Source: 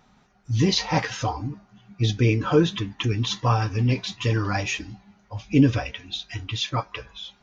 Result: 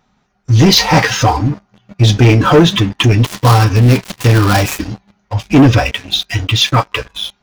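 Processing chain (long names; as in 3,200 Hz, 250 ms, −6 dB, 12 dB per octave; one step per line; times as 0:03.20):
0:03.24–0:04.91: gap after every zero crossing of 0.16 ms
leveller curve on the samples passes 3
level +5 dB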